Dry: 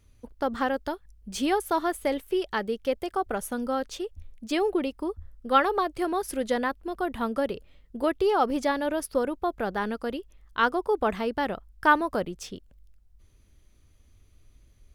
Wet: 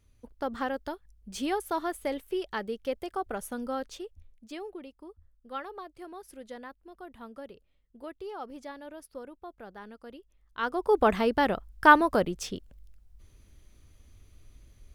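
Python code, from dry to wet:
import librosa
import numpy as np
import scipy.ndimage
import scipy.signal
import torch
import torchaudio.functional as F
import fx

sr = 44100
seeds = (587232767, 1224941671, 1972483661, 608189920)

y = fx.gain(x, sr, db=fx.line((3.85, -5.0), (4.75, -16.5), (9.96, -16.5), (10.6, -9.0), (10.95, 3.0)))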